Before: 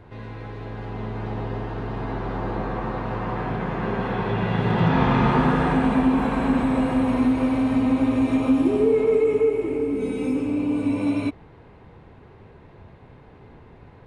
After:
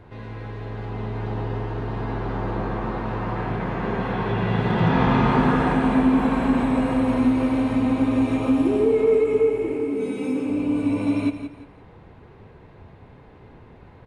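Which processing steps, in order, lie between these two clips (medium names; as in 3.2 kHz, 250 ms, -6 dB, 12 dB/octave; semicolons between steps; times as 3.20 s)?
9.71–10.50 s: Bessel high-pass 170 Hz, order 2; on a send: feedback delay 173 ms, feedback 30%, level -10 dB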